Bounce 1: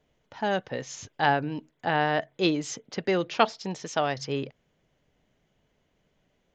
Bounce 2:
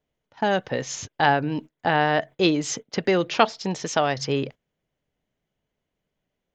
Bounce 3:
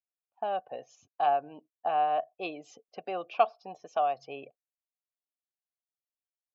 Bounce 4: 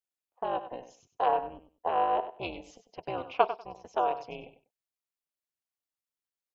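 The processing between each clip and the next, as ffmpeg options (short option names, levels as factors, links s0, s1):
-filter_complex "[0:a]agate=range=0.126:threshold=0.00794:ratio=16:detection=peak,asplit=2[s0][s1];[s1]acompressor=threshold=0.0282:ratio=6,volume=1.12[s2];[s0][s2]amix=inputs=2:normalize=0,volume=1.19"
-filter_complex "[0:a]afftdn=nr=21:nf=-37,asplit=3[s0][s1][s2];[s0]bandpass=f=730:t=q:w=8,volume=1[s3];[s1]bandpass=f=1090:t=q:w=8,volume=0.501[s4];[s2]bandpass=f=2440:t=q:w=8,volume=0.355[s5];[s3][s4][s5]amix=inputs=3:normalize=0"
-filter_complex "[0:a]tremolo=f=250:d=0.947,asplit=2[s0][s1];[s1]aecho=0:1:97|194:0.251|0.0477[s2];[s0][s2]amix=inputs=2:normalize=0,volume=1.5"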